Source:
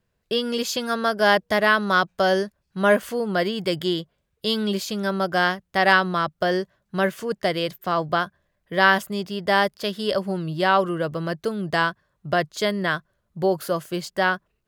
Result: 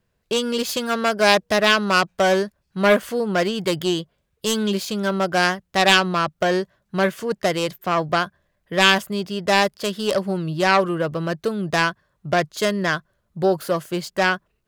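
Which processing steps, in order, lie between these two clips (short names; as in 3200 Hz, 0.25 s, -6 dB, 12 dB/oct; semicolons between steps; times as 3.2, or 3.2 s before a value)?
self-modulated delay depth 0.2 ms; gain +2.5 dB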